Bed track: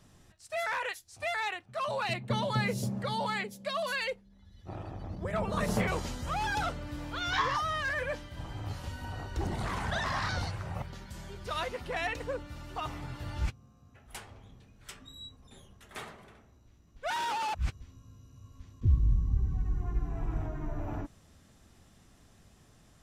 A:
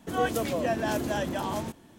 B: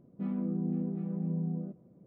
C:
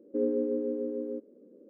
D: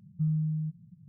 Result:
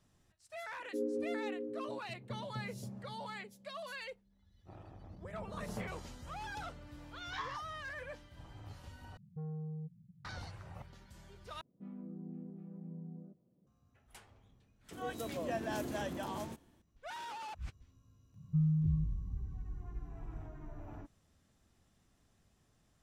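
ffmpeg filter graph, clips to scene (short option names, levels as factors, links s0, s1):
-filter_complex "[4:a]asplit=2[s0][s1];[0:a]volume=0.251[s2];[3:a]equalizer=f=360:t=o:w=0.79:g=5[s3];[s0]asoftclip=type=tanh:threshold=0.0237[s4];[1:a]dynaudnorm=f=170:g=5:m=2[s5];[s1]aecho=1:1:2.2:0.65[s6];[s2]asplit=3[s7][s8][s9];[s7]atrim=end=9.174[s10];[s4]atrim=end=1.08,asetpts=PTS-STARTPTS,volume=0.447[s11];[s8]atrim=start=10.246:end=11.614[s12];[2:a]atrim=end=2.06,asetpts=PTS-STARTPTS,volume=0.2[s13];[s9]atrim=start=13.666[s14];[s3]atrim=end=1.69,asetpts=PTS-STARTPTS,volume=0.282,afade=t=in:d=0.004:c=hsin,afade=t=out:st=1.686:d=0.004:c=hsin,adelay=790[s15];[s5]atrim=end=1.98,asetpts=PTS-STARTPTS,volume=0.168,afade=t=in:d=0.004:c=hsin,afade=t=out:st=1.976:d=0.004:c=hsin,adelay=14840[s16];[s6]atrim=end=1.08,asetpts=PTS-STARTPTS,volume=0.944,afade=t=in:d=0.004:c=hsin,afade=t=out:st=1.076:d=0.004:c=hsin,adelay=18340[s17];[s10][s11]acrossfade=d=0.004:c1=hsin:c2=hsin[s18];[s18][s12]acrossfade=d=0.004:c1=hsin:c2=hsin[s19];[s19][s13]acrossfade=d=0.004:c1=hsin:c2=hsin[s20];[s20][s14]acrossfade=d=0.004:c1=hsin:c2=hsin[s21];[s21][s15][s16][s17]amix=inputs=4:normalize=0"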